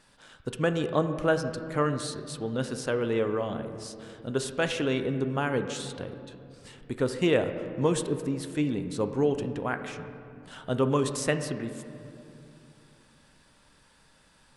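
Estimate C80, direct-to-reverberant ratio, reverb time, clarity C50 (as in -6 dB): 10.5 dB, 7.5 dB, 2.6 s, 9.5 dB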